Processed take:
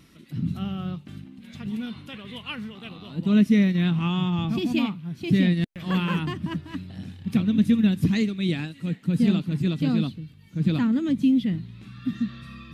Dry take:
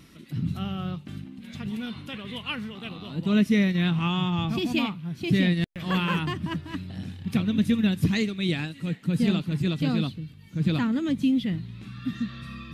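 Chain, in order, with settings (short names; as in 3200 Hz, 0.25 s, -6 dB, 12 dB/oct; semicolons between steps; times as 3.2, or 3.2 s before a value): dynamic EQ 230 Hz, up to +6 dB, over -35 dBFS, Q 1.1; gain -2.5 dB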